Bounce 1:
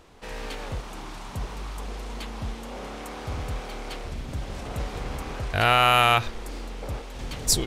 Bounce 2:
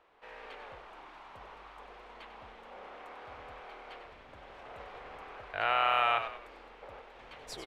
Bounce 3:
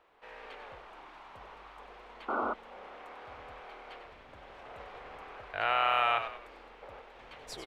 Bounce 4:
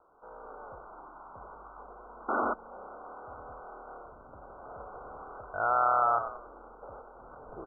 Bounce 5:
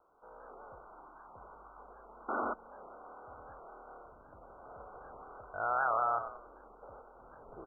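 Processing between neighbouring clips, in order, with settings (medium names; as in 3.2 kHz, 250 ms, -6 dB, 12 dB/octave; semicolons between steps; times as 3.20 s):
three-band isolator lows -20 dB, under 450 Hz, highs -23 dB, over 3.1 kHz; on a send: frequency-shifting echo 96 ms, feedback 39%, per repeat -39 Hz, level -9.5 dB; on the sum: trim -8 dB
painted sound noise, 2.28–2.54 s, 210–1500 Hz -32 dBFS
Chebyshev low-pass 1.5 kHz, order 10; trim +3.5 dB
warped record 78 rpm, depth 160 cents; trim -5.5 dB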